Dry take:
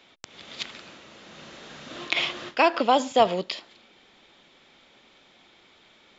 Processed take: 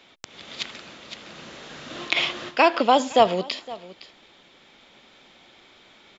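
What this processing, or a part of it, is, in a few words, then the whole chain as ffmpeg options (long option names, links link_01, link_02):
ducked delay: -filter_complex "[0:a]asplit=3[link_01][link_02][link_03];[link_02]adelay=513,volume=-4dB[link_04];[link_03]apad=whole_len=295297[link_05];[link_04][link_05]sidechaincompress=threshold=-35dB:ratio=5:attack=11:release=1220[link_06];[link_01][link_06]amix=inputs=2:normalize=0,volume=2.5dB"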